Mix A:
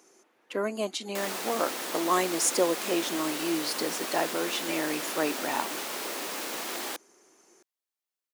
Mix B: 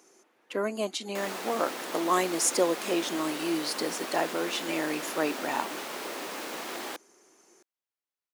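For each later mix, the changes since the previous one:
background: add high shelf 4000 Hz -7.5 dB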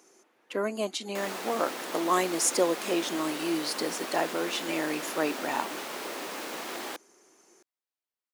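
none

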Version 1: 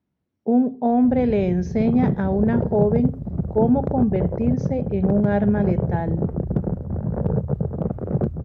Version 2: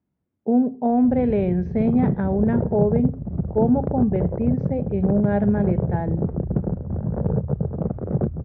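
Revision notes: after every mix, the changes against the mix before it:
master: add air absorption 380 m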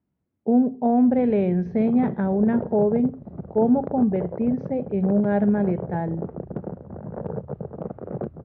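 background: add HPF 500 Hz 6 dB/oct

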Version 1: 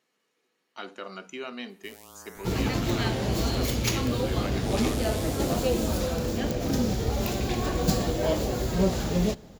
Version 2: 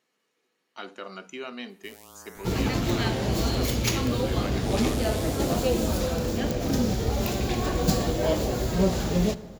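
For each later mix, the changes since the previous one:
second sound: send +9.0 dB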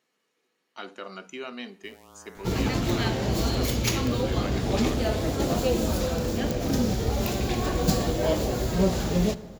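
first sound: add bell 13000 Hz -11.5 dB 2.4 oct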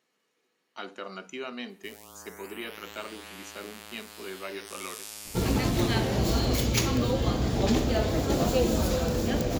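first sound: add bell 13000 Hz +11.5 dB 2.4 oct; second sound: entry +2.90 s

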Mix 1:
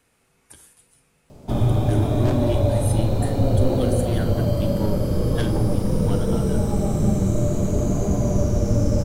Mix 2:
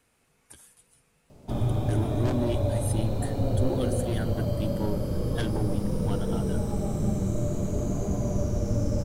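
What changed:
background -6.5 dB; reverb: off

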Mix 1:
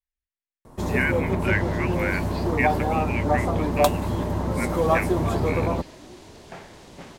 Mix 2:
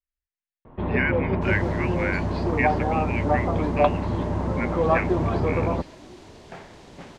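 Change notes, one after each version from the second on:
first sound: add steep low-pass 3100 Hz 36 dB/oct; master: add high shelf 5800 Hz -6 dB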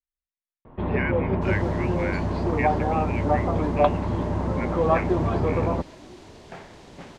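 speech -5.0 dB

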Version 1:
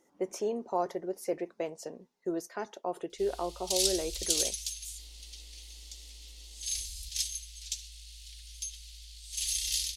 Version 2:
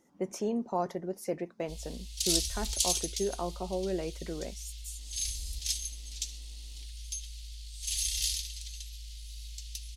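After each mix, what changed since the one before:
background: entry -1.50 s; master: add resonant low shelf 280 Hz +7 dB, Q 1.5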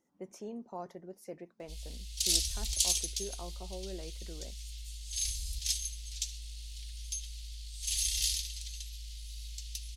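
speech -11.0 dB

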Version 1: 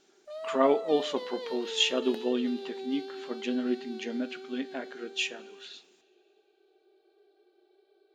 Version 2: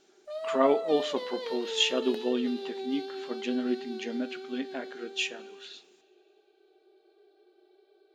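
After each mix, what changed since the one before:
background: send +10.5 dB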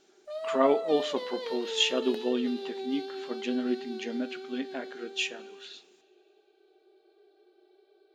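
none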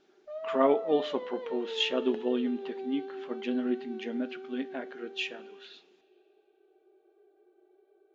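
background: add air absorption 490 m; master: add air absorption 180 m

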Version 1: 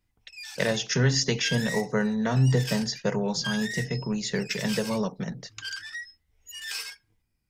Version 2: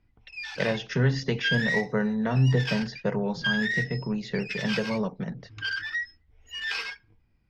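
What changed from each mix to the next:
background +9.5 dB; master: add air absorption 260 m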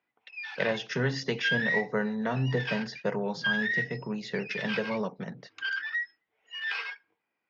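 background: add BPF 470–2900 Hz; master: add HPF 310 Hz 6 dB/oct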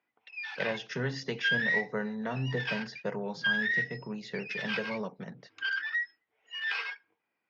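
speech -4.5 dB

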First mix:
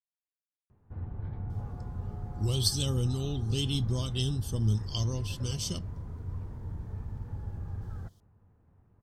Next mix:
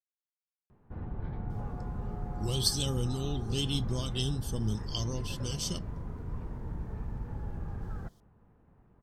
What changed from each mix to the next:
background +5.0 dB; master: add bell 93 Hz -11.5 dB 0.59 oct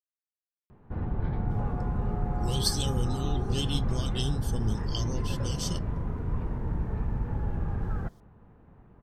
background +7.5 dB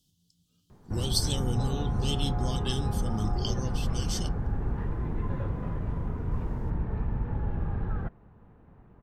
speech: entry -1.50 s

